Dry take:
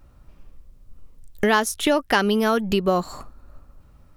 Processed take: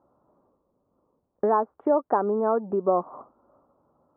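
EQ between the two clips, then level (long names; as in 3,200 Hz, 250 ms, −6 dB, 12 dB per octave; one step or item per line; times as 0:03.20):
high-pass filter 350 Hz 12 dB per octave
Butterworth low-pass 1,100 Hz 36 dB per octave
0.0 dB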